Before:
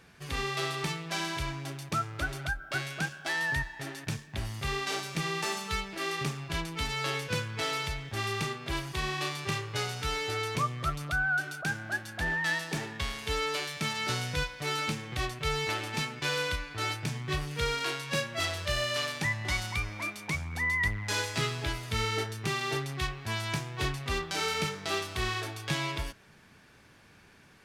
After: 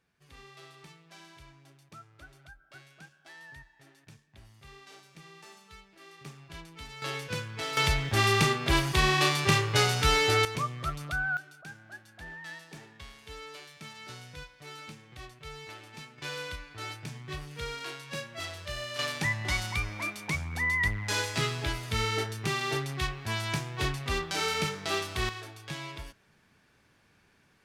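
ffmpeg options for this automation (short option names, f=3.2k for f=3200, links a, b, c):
-af "asetnsamples=n=441:p=0,asendcmd='6.25 volume volume -12dB;7.02 volume volume -3dB;7.77 volume volume 8.5dB;10.45 volume volume -2dB;11.37 volume volume -13.5dB;16.18 volume volume -7dB;18.99 volume volume 1dB;25.29 volume volume -7.5dB',volume=-19dB"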